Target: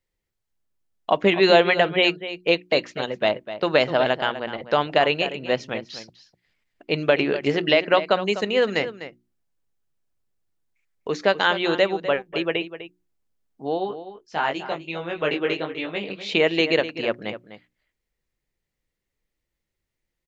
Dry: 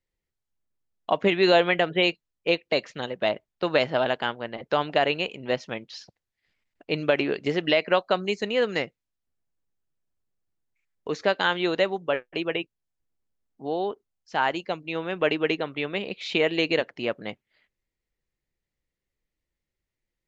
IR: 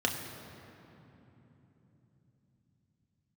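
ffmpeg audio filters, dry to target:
-filter_complex "[0:a]bandreject=f=60:t=h:w=6,bandreject=f=120:t=h:w=6,bandreject=f=180:t=h:w=6,bandreject=f=240:t=h:w=6,bandreject=f=300:t=h:w=6,bandreject=f=360:t=h:w=6,asplit=3[a][b][c];[a]afade=t=out:st=13.77:d=0.02[d];[b]flanger=delay=17:depth=4.7:speed=1.2,afade=t=in:st=13.77:d=0.02,afade=t=out:st=16.27:d=0.02[e];[c]afade=t=in:st=16.27:d=0.02[f];[d][e][f]amix=inputs=3:normalize=0,asplit=2[g][h];[h]adelay=250.7,volume=-12dB,highshelf=f=4k:g=-5.64[i];[g][i]amix=inputs=2:normalize=0,volume=3.5dB"

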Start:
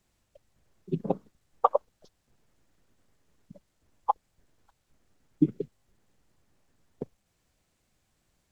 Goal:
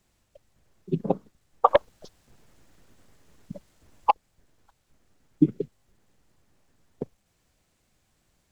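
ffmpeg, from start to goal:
-filter_complex "[0:a]asplit=3[a][b][c];[a]afade=t=out:st=1.67:d=0.02[d];[b]aeval=exprs='0.376*(cos(1*acos(clip(val(0)/0.376,-1,1)))-cos(1*PI/2))+0.106*(cos(5*acos(clip(val(0)/0.376,-1,1)))-cos(5*PI/2))':c=same,afade=t=in:st=1.67:d=0.02,afade=t=out:st=4.09:d=0.02[e];[c]afade=t=in:st=4.09:d=0.02[f];[d][e][f]amix=inputs=3:normalize=0,volume=3.5dB"

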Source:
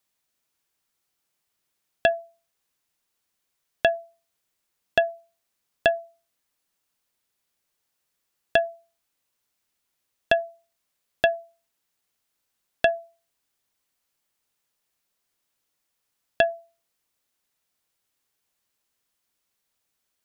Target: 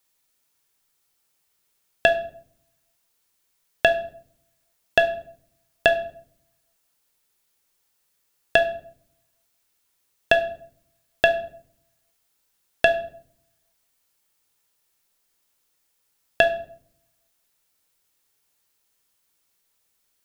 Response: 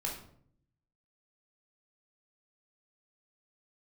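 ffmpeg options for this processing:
-filter_complex "[0:a]asplit=2[a][b];[1:a]atrim=start_sample=2205,highshelf=f=4.7k:g=10.5[c];[b][c]afir=irnorm=-1:irlink=0,volume=-7dB[d];[a][d]amix=inputs=2:normalize=0,volume=1dB"

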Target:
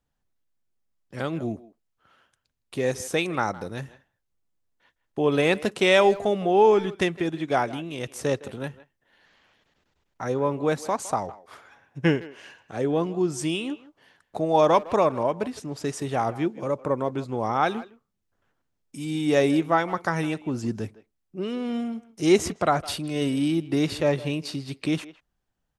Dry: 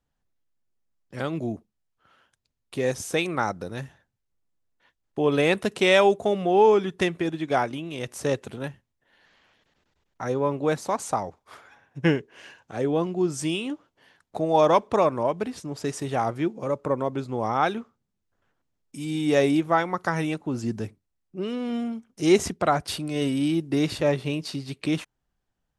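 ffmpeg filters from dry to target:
-filter_complex "[0:a]asplit=2[a][b];[b]adelay=160,highpass=300,lowpass=3.4k,asoftclip=type=hard:threshold=-15.5dB,volume=-17dB[c];[a][c]amix=inputs=2:normalize=0"

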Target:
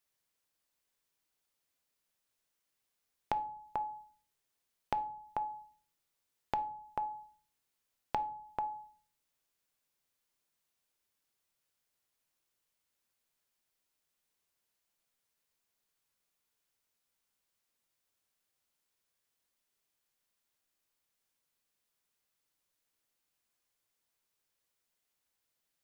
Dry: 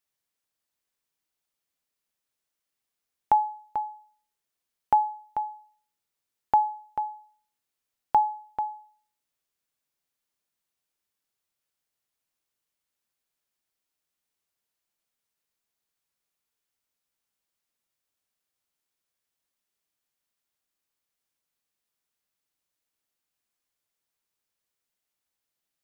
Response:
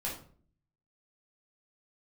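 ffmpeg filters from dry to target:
-filter_complex "[0:a]acompressor=threshold=-35dB:ratio=6,asplit=2[a][b];[1:a]atrim=start_sample=2205[c];[b][c]afir=irnorm=-1:irlink=0,volume=-13.5dB[d];[a][d]amix=inputs=2:normalize=0"

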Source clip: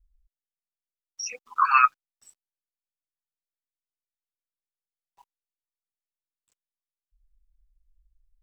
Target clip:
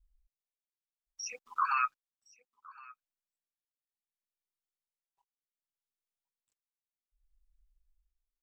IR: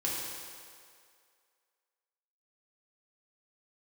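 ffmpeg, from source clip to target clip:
-filter_complex "[0:a]tremolo=f=0.66:d=0.91,alimiter=limit=-15.5dB:level=0:latency=1:release=90,asplit=2[a][b];[b]aecho=0:1:1064:0.075[c];[a][c]amix=inputs=2:normalize=0,volume=-4.5dB"

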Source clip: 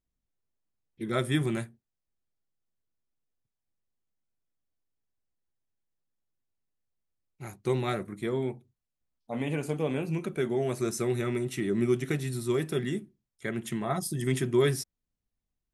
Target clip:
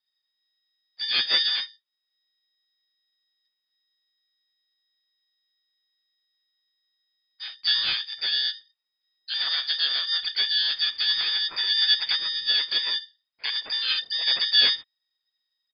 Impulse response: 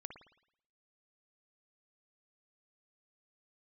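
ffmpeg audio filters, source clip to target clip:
-filter_complex "[0:a]lowpass=f=3.2k:t=q:w=0.5098,lowpass=f=3.2k:t=q:w=0.6013,lowpass=f=3.2k:t=q:w=0.9,lowpass=f=3.2k:t=q:w=2.563,afreqshift=-3800,asplit=4[a][b][c][d];[b]asetrate=22050,aresample=44100,atempo=2,volume=-11dB[e];[c]asetrate=37084,aresample=44100,atempo=1.18921,volume=-18dB[f];[d]asetrate=58866,aresample=44100,atempo=0.749154,volume=-2dB[g];[a][e][f][g]amix=inputs=4:normalize=0,volume=2dB"

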